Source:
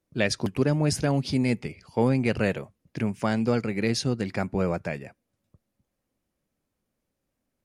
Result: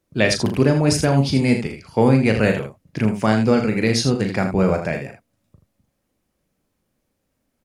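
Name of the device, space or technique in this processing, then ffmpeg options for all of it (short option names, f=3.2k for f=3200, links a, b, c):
slapback doubling: -filter_complex "[0:a]asplit=3[a][b][c];[b]adelay=37,volume=-7dB[d];[c]adelay=80,volume=-8.5dB[e];[a][d][e]amix=inputs=3:normalize=0,volume=6.5dB"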